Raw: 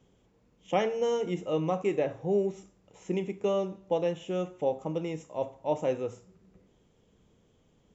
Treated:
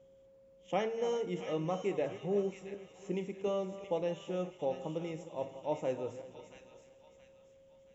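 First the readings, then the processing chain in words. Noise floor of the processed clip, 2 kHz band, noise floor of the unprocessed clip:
−62 dBFS, −5.0 dB, −67 dBFS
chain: feedback delay that plays each chunk backwards 183 ms, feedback 59%, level −13.5 dB
delay with a high-pass on its return 676 ms, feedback 37%, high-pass 1,800 Hz, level −6 dB
steady tone 540 Hz −53 dBFS
level −6 dB

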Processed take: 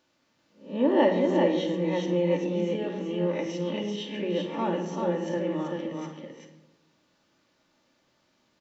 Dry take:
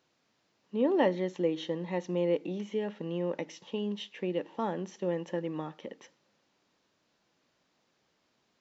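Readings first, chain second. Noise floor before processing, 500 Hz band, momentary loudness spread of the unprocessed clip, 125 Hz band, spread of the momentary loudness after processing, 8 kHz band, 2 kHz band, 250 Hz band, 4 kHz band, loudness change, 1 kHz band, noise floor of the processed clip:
−75 dBFS, +5.0 dB, 11 LU, +6.0 dB, 12 LU, can't be measured, +5.5 dB, +6.5 dB, +6.0 dB, +5.5 dB, +6.0 dB, −70 dBFS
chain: peak hold with a rise ahead of every peak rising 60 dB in 0.37 s
single-tap delay 387 ms −4 dB
rectangular room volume 2,800 cubic metres, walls furnished, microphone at 2.5 metres

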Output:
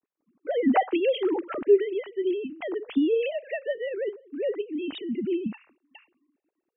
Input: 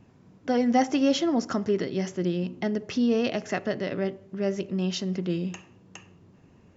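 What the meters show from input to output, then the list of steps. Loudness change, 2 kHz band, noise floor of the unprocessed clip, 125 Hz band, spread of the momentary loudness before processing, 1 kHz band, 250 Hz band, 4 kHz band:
0.0 dB, −1.0 dB, −57 dBFS, below −15 dB, 8 LU, +0.5 dB, −3.0 dB, −5.0 dB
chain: three sine waves on the formant tracks
downward expander −50 dBFS
low-shelf EQ 320 Hz +4 dB
level −1.5 dB

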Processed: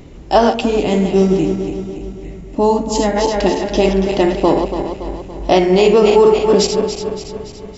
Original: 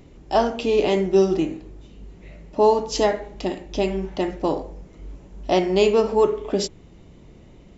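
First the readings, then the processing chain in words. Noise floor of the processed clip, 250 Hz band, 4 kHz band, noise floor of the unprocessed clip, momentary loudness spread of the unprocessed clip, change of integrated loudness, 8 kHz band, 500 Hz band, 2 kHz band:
−34 dBFS, +9.5 dB, +8.0 dB, −48 dBFS, 12 LU, +7.0 dB, can't be measured, +7.0 dB, +7.5 dB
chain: feedback delay that plays each chunk backwards 142 ms, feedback 72%, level −7.5 dB
gain on a spectral selection 0:00.61–0:03.16, 320–6,500 Hz −8 dB
boost into a limiter +10.5 dB
level −1 dB

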